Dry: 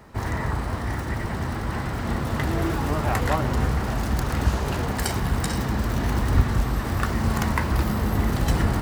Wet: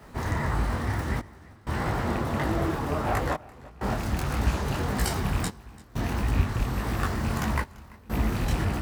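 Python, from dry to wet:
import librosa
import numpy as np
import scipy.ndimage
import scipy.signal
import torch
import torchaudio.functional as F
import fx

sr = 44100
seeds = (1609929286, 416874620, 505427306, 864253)

y = fx.rattle_buzz(x, sr, strikes_db=-18.0, level_db=-22.0)
y = fx.peak_eq(y, sr, hz=600.0, db=5.5, octaves=2.7, at=(1.8, 3.94))
y = fx.rider(y, sr, range_db=3, speed_s=0.5)
y = fx.dmg_noise_colour(y, sr, seeds[0], colour='pink', level_db=-58.0)
y = fx.step_gate(y, sr, bpm=63, pattern='xxxxx..xx', floor_db=-24.0, edge_ms=4.5)
y = y + 10.0 ** (-22.0 / 20.0) * np.pad(y, (int(340 * sr / 1000.0), 0))[:len(y)]
y = fx.detune_double(y, sr, cents=55)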